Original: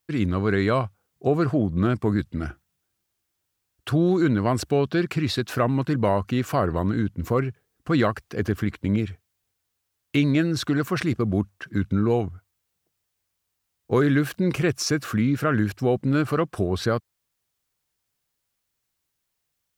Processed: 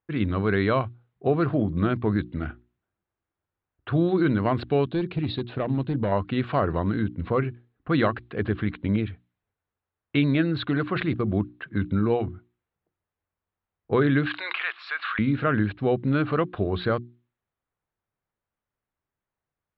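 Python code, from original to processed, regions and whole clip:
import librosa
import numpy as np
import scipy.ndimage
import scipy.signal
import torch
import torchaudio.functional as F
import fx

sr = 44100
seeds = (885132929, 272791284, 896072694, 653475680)

y = fx.chain(x, sr, fx.peak_eq(hz=1500.0, db=-11.5, octaves=1.8),
    fx.clip_hard(threshold_db=-18.5), at=(4.89, 6.12))
y = fx.chain(y, sr, fx.highpass(hz=990.0, slope=24),
    fx.high_shelf(hz=11000.0, db=-5.0),
    fx.env_flatten(amount_pct=70), at=(14.26, 15.19))
y = fx.hum_notches(y, sr, base_hz=60, count=6)
y = fx.env_lowpass(y, sr, base_hz=1400.0, full_db=-20.0)
y = scipy.signal.sosfilt(scipy.signal.ellip(4, 1.0, 40, 3900.0, 'lowpass', fs=sr, output='sos'), y)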